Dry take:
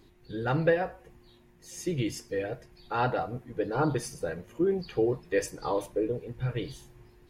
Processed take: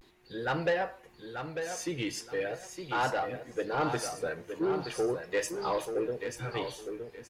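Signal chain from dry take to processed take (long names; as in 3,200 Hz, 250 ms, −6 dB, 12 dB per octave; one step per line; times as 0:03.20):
mid-hump overdrive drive 16 dB, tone 7,800 Hz, clips at −12.5 dBFS
repeating echo 903 ms, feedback 25%, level −7.5 dB
pitch vibrato 0.4 Hz 50 cents
level −7 dB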